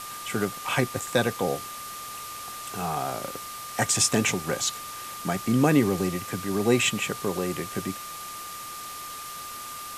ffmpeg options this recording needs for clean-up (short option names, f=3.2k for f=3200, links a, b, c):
-af "bandreject=f=1.2k:w=30,afwtdn=0.011"